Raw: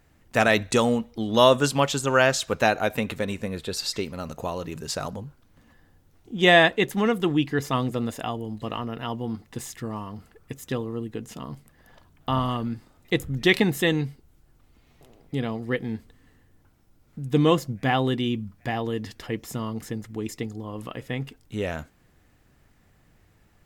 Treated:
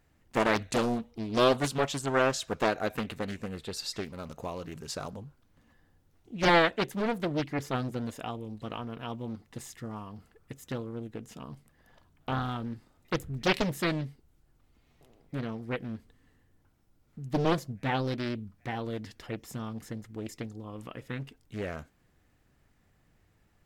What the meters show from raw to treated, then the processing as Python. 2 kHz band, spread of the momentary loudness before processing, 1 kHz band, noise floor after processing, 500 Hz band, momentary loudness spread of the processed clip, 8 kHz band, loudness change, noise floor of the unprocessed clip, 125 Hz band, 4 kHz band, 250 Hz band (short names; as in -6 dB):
-8.0 dB, 16 LU, -5.5 dB, -68 dBFS, -7.0 dB, 16 LU, -7.5 dB, -7.0 dB, -61 dBFS, -6.5 dB, -8.0 dB, -7.0 dB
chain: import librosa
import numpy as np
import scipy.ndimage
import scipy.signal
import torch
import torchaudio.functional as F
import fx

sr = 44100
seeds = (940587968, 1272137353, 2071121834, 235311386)

y = fx.doppler_dist(x, sr, depth_ms=0.93)
y = F.gain(torch.from_numpy(y), -7.0).numpy()